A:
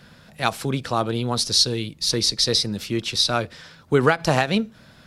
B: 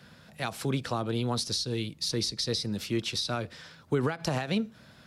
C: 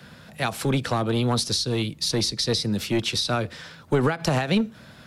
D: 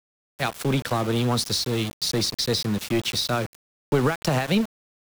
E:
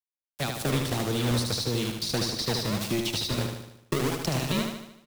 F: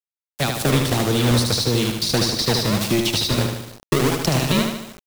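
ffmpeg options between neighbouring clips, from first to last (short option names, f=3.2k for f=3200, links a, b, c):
-filter_complex "[0:a]highpass=53,alimiter=limit=-10dB:level=0:latency=1:release=114,acrossover=split=330[a][b];[b]acompressor=threshold=-24dB:ratio=6[c];[a][c]amix=inputs=2:normalize=0,volume=-4.5dB"
-filter_complex "[0:a]acrossover=split=100|1300[a][b][c];[b]aeval=exprs='clip(val(0),-1,0.0447)':c=same[d];[c]equalizer=f=5.1k:t=o:w=0.66:g=-2.5[e];[a][d][e]amix=inputs=3:normalize=0,volume=7.5dB"
-af "aeval=exprs='val(0)*gte(abs(val(0)),0.0335)':c=same"
-filter_complex "[0:a]acrossover=split=390|2800[a][b][c];[a]acompressor=threshold=-28dB:ratio=4[d];[b]acompressor=threshold=-34dB:ratio=4[e];[c]acompressor=threshold=-32dB:ratio=4[f];[d][e][f]amix=inputs=3:normalize=0,acrossover=split=2000[g][h];[g]acrusher=samples=33:mix=1:aa=0.000001:lfo=1:lforange=52.8:lforate=1.6[i];[i][h]amix=inputs=2:normalize=0,aecho=1:1:75|150|225|300|375|450|525:0.562|0.298|0.158|0.0837|0.0444|0.0235|0.0125"
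-af "acrusher=bits=7:mix=0:aa=0.000001,volume=8.5dB"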